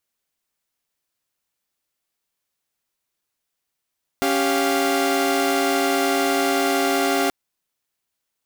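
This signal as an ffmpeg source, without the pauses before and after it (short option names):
-f lavfi -i "aevalsrc='0.1*((2*mod(277.18*t,1)-1)+(2*mod(392*t,1)-1)+(2*mod(698.46*t,1)-1))':d=3.08:s=44100"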